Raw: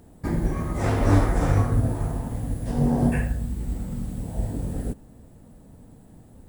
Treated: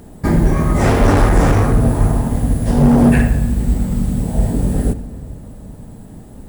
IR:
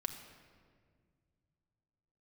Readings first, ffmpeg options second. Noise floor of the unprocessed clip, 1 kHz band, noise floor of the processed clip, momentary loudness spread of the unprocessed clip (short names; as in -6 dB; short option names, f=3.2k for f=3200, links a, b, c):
-50 dBFS, +10.5 dB, -38 dBFS, 11 LU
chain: -filter_complex "[0:a]asoftclip=type=hard:threshold=-19dB,asplit=2[a][b];[1:a]atrim=start_sample=2205[c];[b][c]afir=irnorm=-1:irlink=0,volume=0dB[d];[a][d]amix=inputs=2:normalize=0,volume=6.5dB"